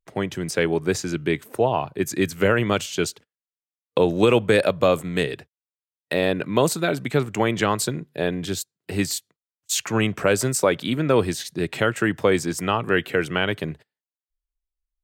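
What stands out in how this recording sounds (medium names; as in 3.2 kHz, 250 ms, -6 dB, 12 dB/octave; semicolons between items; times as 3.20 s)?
noise floor -96 dBFS; spectral tilt -4.5 dB/octave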